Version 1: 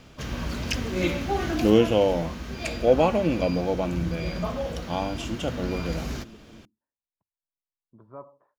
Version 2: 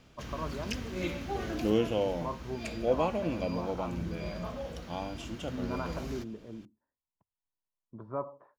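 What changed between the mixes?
speech +7.0 dB
background −9.0 dB

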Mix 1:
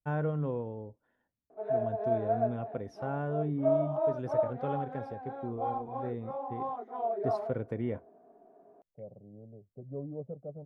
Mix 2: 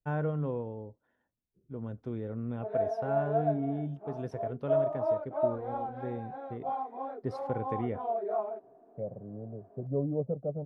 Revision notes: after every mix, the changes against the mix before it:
second voice +8.5 dB
background: entry +1.05 s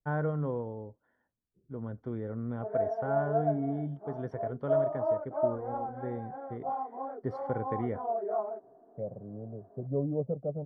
first voice: add high-shelf EQ 2,100 Hz +11.5 dB
master: add Savitzky-Golay smoothing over 41 samples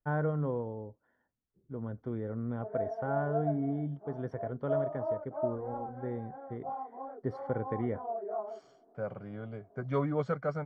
second voice: remove Butterworth low-pass 660 Hz 36 dB per octave
background −4.5 dB

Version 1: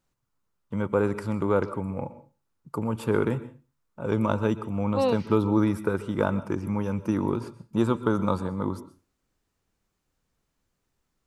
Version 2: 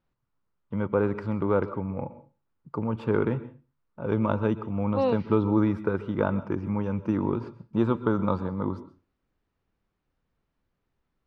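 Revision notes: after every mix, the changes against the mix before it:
master: add high-frequency loss of the air 240 metres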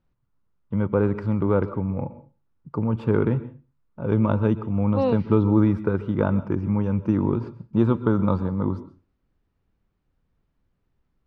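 master: add low-shelf EQ 260 Hz +8.5 dB

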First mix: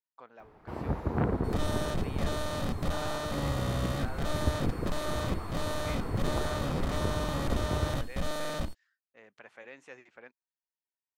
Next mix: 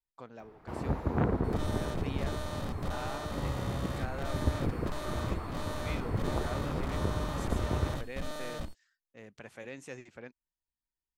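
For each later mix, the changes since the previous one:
speech: remove resonant band-pass 1,300 Hz, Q 0.64
second sound −5.5 dB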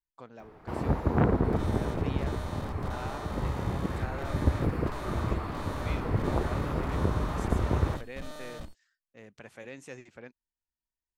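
first sound +4.5 dB
second sound −3.5 dB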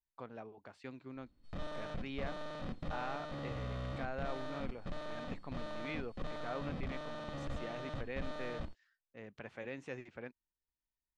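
first sound: muted
master: add low-pass filter 3,500 Hz 12 dB per octave

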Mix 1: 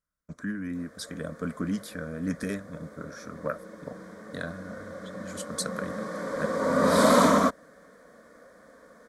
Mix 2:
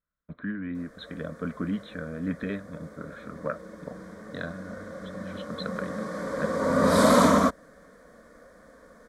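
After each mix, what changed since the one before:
speech: add linear-phase brick-wall low-pass 4,200 Hz
background: remove high-pass filter 160 Hz 6 dB per octave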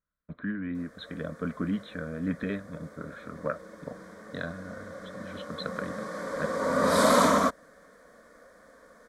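background: add low-shelf EQ 320 Hz −8.5 dB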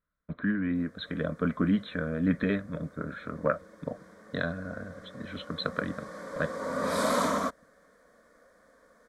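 speech +4.5 dB
background −6.0 dB

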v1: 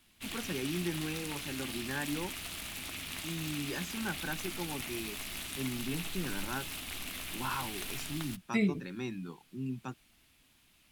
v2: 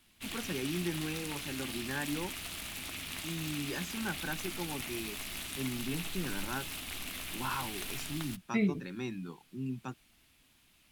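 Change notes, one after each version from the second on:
second voice: add high-frequency loss of the air 170 metres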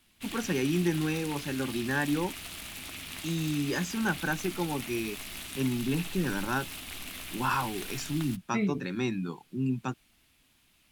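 first voice +8.0 dB

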